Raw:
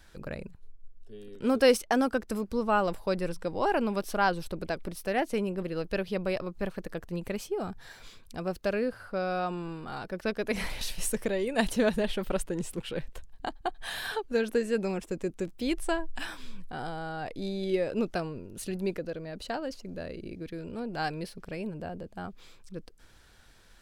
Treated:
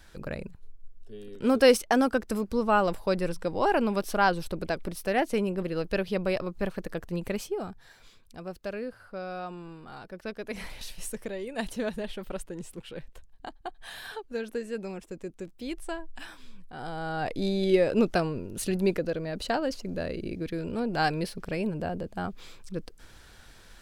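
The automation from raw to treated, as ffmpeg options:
ffmpeg -i in.wav -af "volume=14.5dB,afade=type=out:start_time=7.4:duration=0.4:silence=0.375837,afade=type=in:start_time=16.71:duration=0.54:silence=0.251189" out.wav

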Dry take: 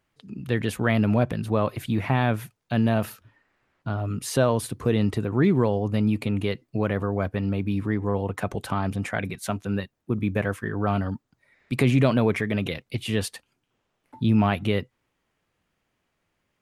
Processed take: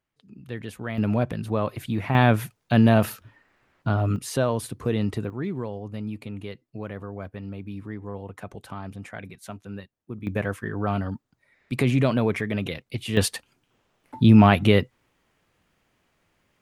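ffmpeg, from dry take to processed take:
ffmpeg -i in.wav -af "asetnsamples=nb_out_samples=441:pad=0,asendcmd='0.98 volume volume -2dB;2.15 volume volume 5dB;4.16 volume volume -2.5dB;5.3 volume volume -10dB;10.27 volume volume -1.5dB;13.17 volume volume 6.5dB',volume=-9.5dB" out.wav

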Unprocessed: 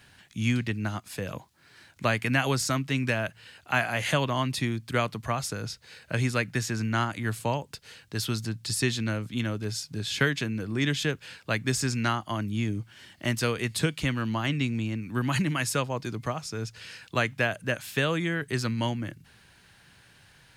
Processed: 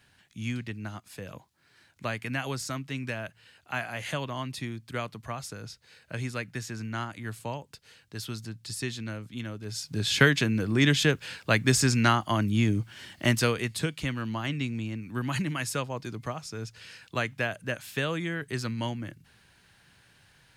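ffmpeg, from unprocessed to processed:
ffmpeg -i in.wav -af "volume=4.5dB,afade=type=in:start_time=9.65:duration=0.42:silence=0.266073,afade=type=out:start_time=13.25:duration=0.5:silence=0.398107" out.wav

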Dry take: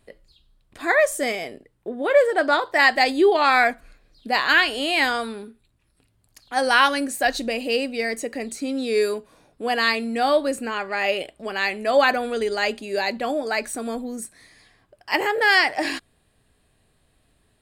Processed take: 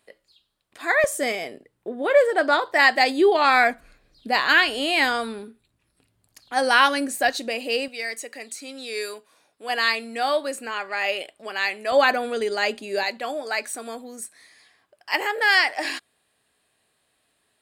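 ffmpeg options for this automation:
ffmpeg -i in.wav -af "asetnsamples=nb_out_samples=441:pad=0,asendcmd='1.04 highpass f 170;3.45 highpass f 49;5.39 highpass f 110;7.29 highpass f 430;7.88 highpass f 1500;9.69 highpass f 740;11.92 highpass f 220;13.03 highpass f 770',highpass=frequency=670:poles=1" out.wav

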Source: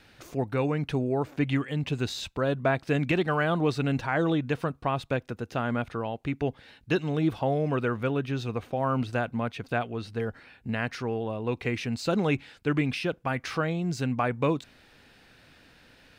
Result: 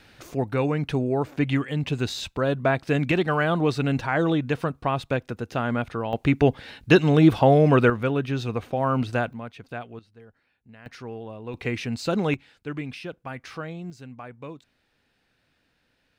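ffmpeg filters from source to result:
ffmpeg -i in.wav -af "asetnsamples=nb_out_samples=441:pad=0,asendcmd='6.13 volume volume 10dB;7.9 volume volume 3.5dB;9.33 volume volume -6.5dB;9.99 volume volume -18.5dB;10.86 volume volume -6dB;11.54 volume volume 1.5dB;12.34 volume volume -6.5dB;13.9 volume volume -13.5dB',volume=3dB" out.wav

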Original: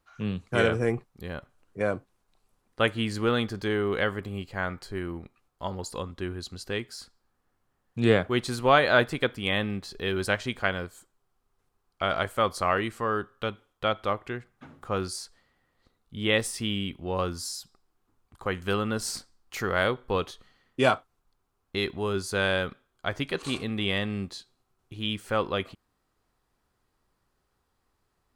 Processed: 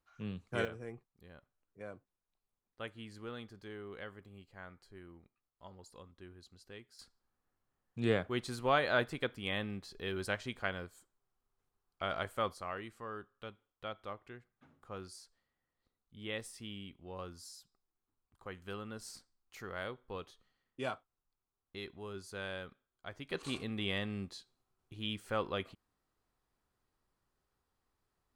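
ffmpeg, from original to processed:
ffmpeg -i in.wav -af "asetnsamples=nb_out_samples=441:pad=0,asendcmd='0.65 volume volume -20dB;6.99 volume volume -10dB;12.54 volume volume -16.5dB;23.3 volume volume -8.5dB',volume=-11dB" out.wav

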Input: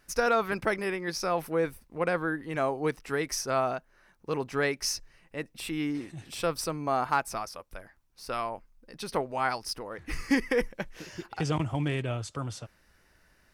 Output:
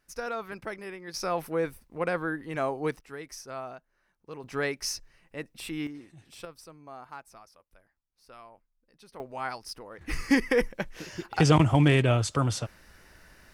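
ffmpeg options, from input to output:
ffmpeg -i in.wav -af "asetnsamples=nb_out_samples=441:pad=0,asendcmd='1.14 volume volume -1dB;3 volume volume -11dB;4.44 volume volume -2dB;5.87 volume volume -10dB;6.45 volume volume -17dB;9.2 volume volume -5.5dB;10.01 volume volume 2.5dB;11.34 volume volume 9dB',volume=-9dB" out.wav

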